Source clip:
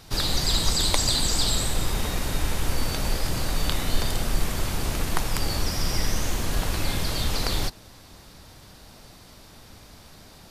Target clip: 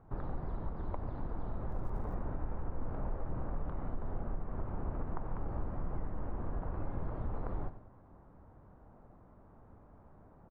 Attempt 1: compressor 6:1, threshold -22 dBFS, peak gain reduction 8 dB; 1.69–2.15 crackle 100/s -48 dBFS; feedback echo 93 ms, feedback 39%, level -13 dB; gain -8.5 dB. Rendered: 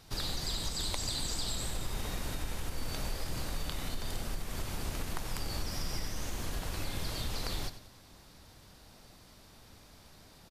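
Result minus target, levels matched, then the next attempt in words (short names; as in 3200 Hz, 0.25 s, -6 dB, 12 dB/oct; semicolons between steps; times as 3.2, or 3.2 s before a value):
1000 Hz band -3.0 dB
compressor 6:1, threshold -22 dBFS, peak gain reduction 8 dB; LPF 1200 Hz 24 dB/oct; 1.69–2.15 crackle 100/s -48 dBFS; feedback echo 93 ms, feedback 39%, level -13 dB; gain -8.5 dB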